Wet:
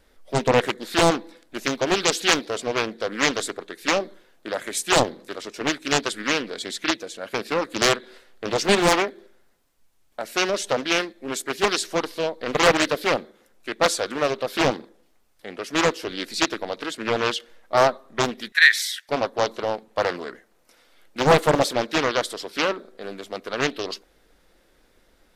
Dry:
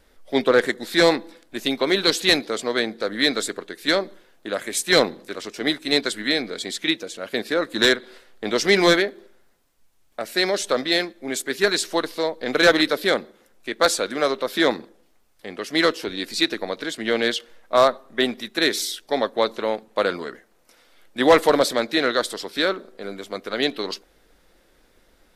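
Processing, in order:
0:18.52–0:19.09: high-pass with resonance 1,800 Hz, resonance Q 5.5
highs frequency-modulated by the lows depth 0.82 ms
level −1.5 dB

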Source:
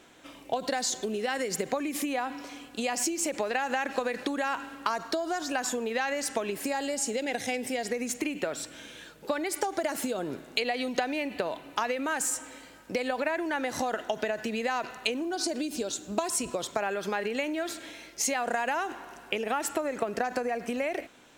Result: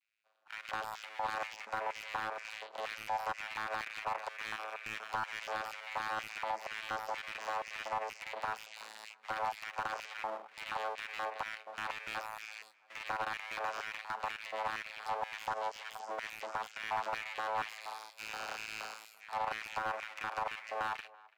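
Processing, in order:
0:18.12–0:19.19: compressing power law on the bin magnitudes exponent 0.13
channel vocoder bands 8, saw 109 Hz
downward compressor 2 to 1, threshold −40 dBFS, peak gain reduction 9.5 dB
brickwall limiter −31.5 dBFS, peak gain reduction 10.5 dB
automatic gain control gain up to 4 dB
noise reduction from a noise print of the clip's start 28 dB
full-wave rectification
auto-filter high-pass square 2.1 Hz 850–2,200 Hz
on a send: tape delay 334 ms, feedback 44%, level −20.5 dB, low-pass 1,900 Hz
on the sum: slew-rate limiting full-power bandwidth 27 Hz
level +4 dB

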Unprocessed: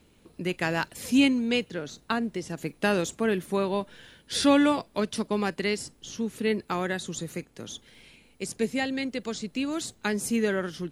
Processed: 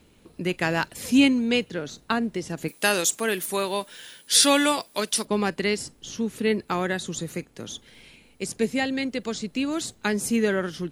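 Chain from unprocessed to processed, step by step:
0:02.68–0:05.25: RIAA equalisation recording
level +3 dB

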